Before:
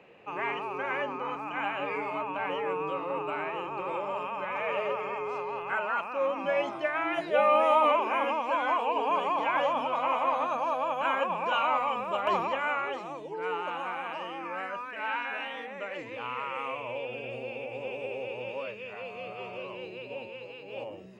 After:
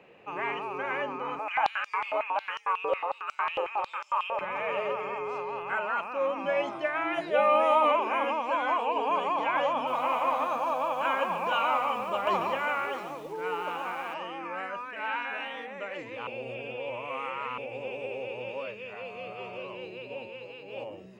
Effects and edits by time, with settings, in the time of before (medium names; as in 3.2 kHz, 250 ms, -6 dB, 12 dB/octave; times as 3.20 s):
1.39–4.41 s: step-sequenced high-pass 11 Hz 540–5700 Hz
9.73–14.14 s: bit-crushed delay 142 ms, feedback 35%, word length 8-bit, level -10 dB
16.27–17.58 s: reverse